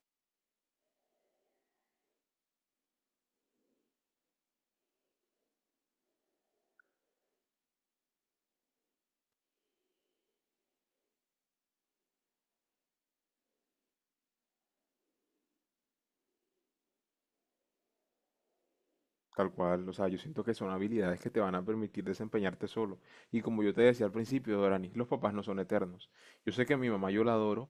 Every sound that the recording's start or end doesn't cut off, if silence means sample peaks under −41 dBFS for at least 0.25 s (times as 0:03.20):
0:19.38–0:22.94
0:23.33–0:25.92